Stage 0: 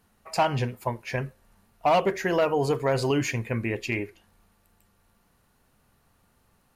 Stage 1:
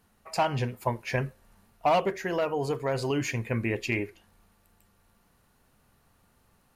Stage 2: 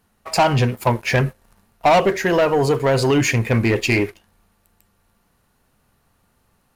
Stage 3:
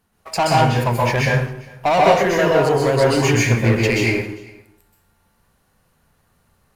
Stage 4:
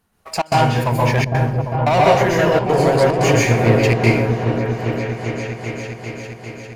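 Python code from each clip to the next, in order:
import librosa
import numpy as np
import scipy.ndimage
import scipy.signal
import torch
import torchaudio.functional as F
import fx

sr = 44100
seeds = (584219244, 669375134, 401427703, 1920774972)

y1 = fx.rider(x, sr, range_db=4, speed_s=0.5)
y1 = F.gain(torch.from_numpy(y1), -3.0).numpy()
y2 = fx.leveller(y1, sr, passes=2)
y2 = F.gain(torch.from_numpy(y2), 6.0).numpy()
y3 = y2 + 10.0 ** (-24.0 / 20.0) * np.pad(y2, (int(400 * sr / 1000.0), 0))[:len(y2)]
y3 = fx.rev_plate(y3, sr, seeds[0], rt60_s=0.63, hf_ratio=0.8, predelay_ms=115, drr_db=-3.5)
y3 = F.gain(torch.from_numpy(y3), -3.5).numpy()
y4 = fx.step_gate(y3, sr, bpm=145, pattern='xxxx.xxxxxxx.', floor_db=-24.0, edge_ms=4.5)
y4 = fx.echo_opening(y4, sr, ms=400, hz=400, octaves=1, feedback_pct=70, wet_db=-3)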